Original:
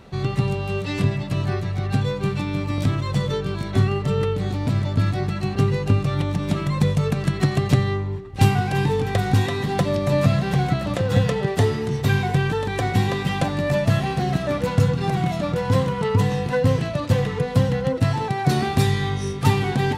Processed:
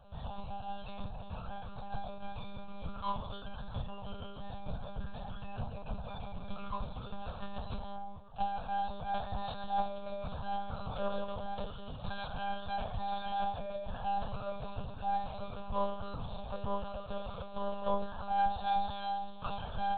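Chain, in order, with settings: bell 190 Hz -4 dB 1.7 oct; compressor 6:1, threshold -22 dBFS, peak gain reduction 9.5 dB; resonator bank G#3 major, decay 0.36 s; monotone LPC vocoder at 8 kHz 200 Hz; fixed phaser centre 830 Hz, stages 4; gain +12.5 dB

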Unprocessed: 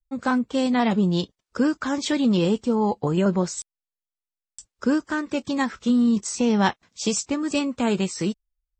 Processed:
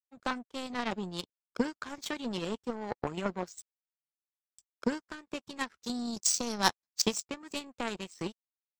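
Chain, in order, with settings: 5.83–7.02 resonant high shelf 3700 Hz +7 dB, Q 3; harmonic-percussive split harmonic -7 dB; power-law curve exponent 2; soft clip -13.5 dBFS, distortion -19 dB; gain +5.5 dB

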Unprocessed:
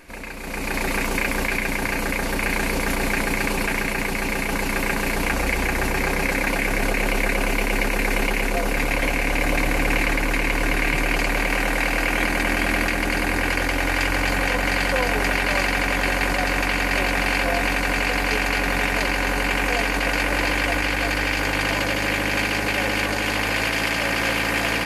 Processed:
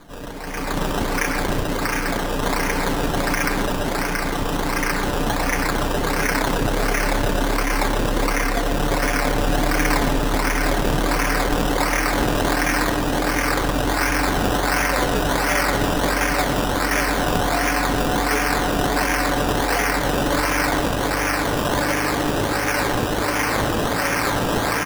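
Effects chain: comb 6.8 ms, depth 54%; decimation with a swept rate 16×, swing 60% 1.4 Hz; speakerphone echo 0.12 s, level -6 dB

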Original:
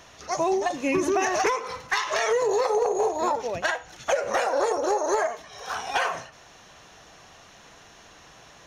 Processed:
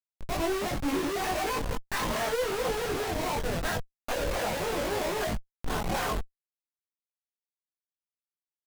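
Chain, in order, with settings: Schmitt trigger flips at -28.5 dBFS; chorus voices 6, 0.35 Hz, delay 21 ms, depth 3.6 ms

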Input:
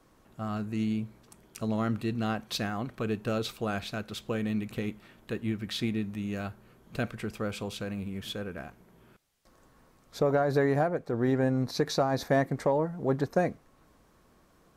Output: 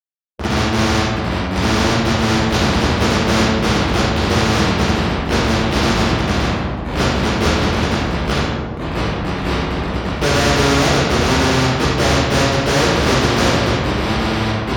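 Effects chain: treble ducked by the level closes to 1300 Hz, closed at -26.5 dBFS; low shelf 72 Hz -11.5 dB; analogue delay 0.292 s, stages 4096, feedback 45%, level -13.5 dB; in parallel at +0.5 dB: compressor 12:1, threshold -35 dBFS, peak gain reduction 14.5 dB; on the sum: Schmitt trigger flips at -25 dBFS; high shelf 11000 Hz -6 dB; reverb RT60 1.1 s, pre-delay 3 ms, DRR -11.5 dB; echoes that change speed 0.644 s, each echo -3 st, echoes 2, each echo -6 dB; spectral compressor 2:1; gain -8.5 dB

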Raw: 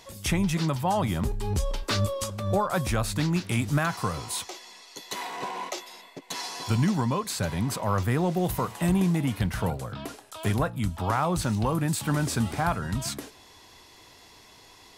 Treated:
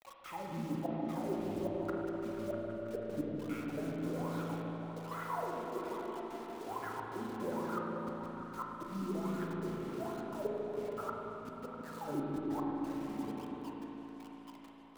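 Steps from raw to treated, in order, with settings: low-pass opened by the level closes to 2800 Hz; in parallel at -3 dB: compressor 4:1, threshold -35 dBFS, peak gain reduction 13 dB; on the sum: wah 1.2 Hz 230–1400 Hz, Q 19; 8.78–9.68 auto swell 0.292 s; flipped gate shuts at -34 dBFS, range -38 dB; bit-crush 10-bit; flange 0.45 Hz, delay 1.4 ms, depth 5.9 ms, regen +73%; on a send: repeats that get brighter 0.162 s, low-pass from 200 Hz, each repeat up 1 oct, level 0 dB; on the sum: spring tank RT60 3.2 s, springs 36/48 ms, chirp 65 ms, DRR -1 dB; gain +10 dB

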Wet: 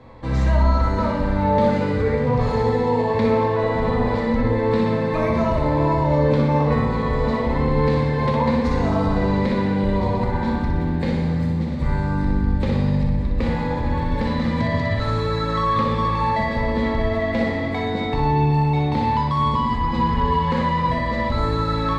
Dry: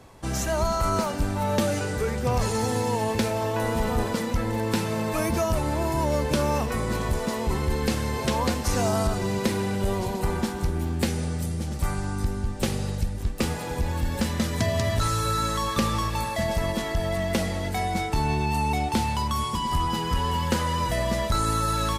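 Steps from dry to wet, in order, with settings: ripple EQ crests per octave 1, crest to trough 8 dB; limiter -17.5 dBFS, peak gain reduction 6.5 dB; air absorption 260 m; flutter echo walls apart 10.5 m, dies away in 0.65 s; reverb RT60 1.3 s, pre-delay 4 ms, DRR 3 dB; gain +3 dB

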